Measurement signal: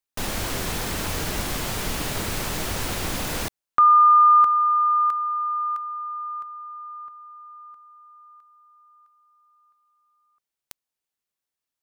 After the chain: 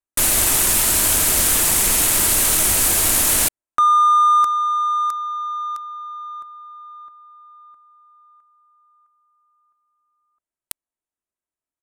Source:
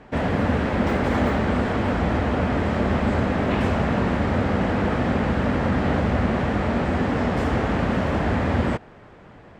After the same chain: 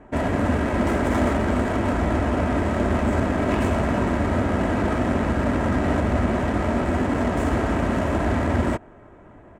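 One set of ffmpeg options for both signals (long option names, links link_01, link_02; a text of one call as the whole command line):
ffmpeg -i in.wav -af "aecho=1:1:3.1:0.38,aexciter=amount=13.1:drive=8.6:freq=7100,adynamicsmooth=sensitivity=2.5:basefreq=1800" out.wav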